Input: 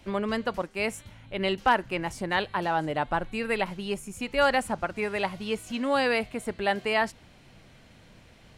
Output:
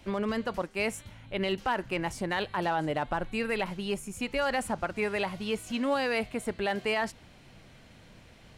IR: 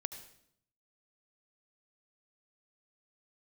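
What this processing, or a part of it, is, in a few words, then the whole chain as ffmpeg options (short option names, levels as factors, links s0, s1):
limiter into clipper: -af "alimiter=limit=0.106:level=0:latency=1:release=27,asoftclip=type=hard:threshold=0.0944"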